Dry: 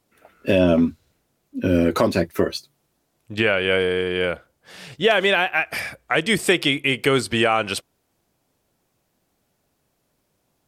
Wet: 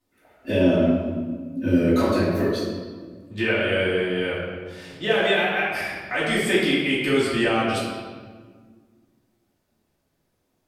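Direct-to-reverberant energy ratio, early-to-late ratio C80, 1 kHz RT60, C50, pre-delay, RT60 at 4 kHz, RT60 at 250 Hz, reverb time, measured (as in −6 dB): −10.0 dB, 2.0 dB, 1.4 s, −0.5 dB, 3 ms, 1.1 s, 2.5 s, 1.6 s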